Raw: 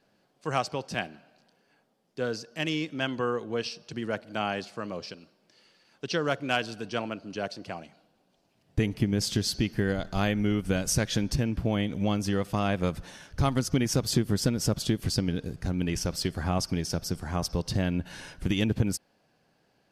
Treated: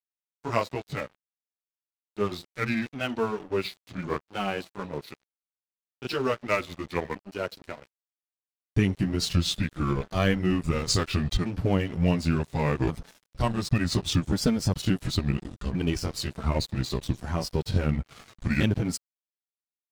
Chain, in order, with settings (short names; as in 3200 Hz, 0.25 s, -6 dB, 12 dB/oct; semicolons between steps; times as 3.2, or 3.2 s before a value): repeated pitch sweeps -6 st, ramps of 1.432 s; grains 0.23 s, grains 15/s, spray 15 ms, pitch spread up and down by 0 st; crossover distortion -48 dBFS; gain +7 dB